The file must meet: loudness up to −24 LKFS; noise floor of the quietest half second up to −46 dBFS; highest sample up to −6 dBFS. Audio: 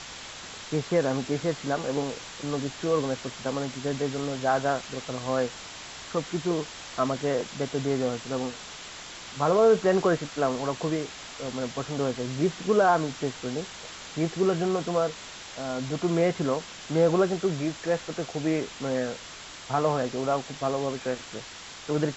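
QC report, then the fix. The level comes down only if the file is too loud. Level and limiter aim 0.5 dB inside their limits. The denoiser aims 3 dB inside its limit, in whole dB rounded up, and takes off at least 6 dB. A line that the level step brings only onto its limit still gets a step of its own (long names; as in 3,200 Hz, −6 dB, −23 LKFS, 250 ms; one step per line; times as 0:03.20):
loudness −28.0 LKFS: in spec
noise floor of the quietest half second −43 dBFS: out of spec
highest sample −10.5 dBFS: in spec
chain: broadband denoise 6 dB, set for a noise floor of −43 dBFS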